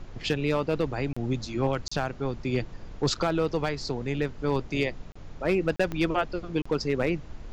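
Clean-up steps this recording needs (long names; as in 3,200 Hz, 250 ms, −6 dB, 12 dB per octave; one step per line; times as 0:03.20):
clipped peaks rebuilt −16.5 dBFS
click removal
repair the gap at 0:01.13/0:01.88/0:05.12/0:05.76/0:06.62, 35 ms
noise reduction from a noise print 30 dB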